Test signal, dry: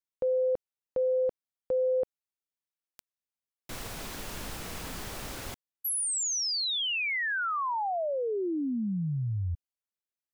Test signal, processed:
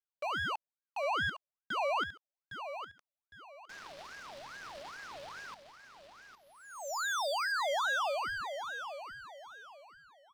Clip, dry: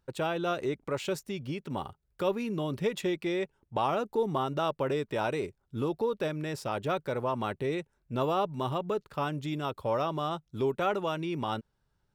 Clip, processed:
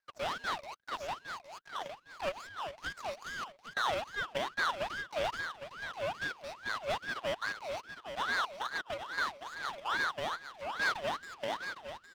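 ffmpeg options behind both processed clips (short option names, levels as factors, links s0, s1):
-af "highpass=f=570:t=q:w=0.5412,highpass=f=570:t=q:w=1.307,lowpass=f=2700:t=q:w=0.5176,lowpass=f=2700:t=q:w=0.7071,lowpass=f=2700:t=q:w=1.932,afreqshift=350,aeval=exprs='abs(val(0))':c=same,aecho=1:1:809|1618|2427:0.355|0.103|0.0298,aeval=exprs='val(0)*sin(2*PI*1100*n/s+1100*0.5/2.4*sin(2*PI*2.4*n/s))':c=same"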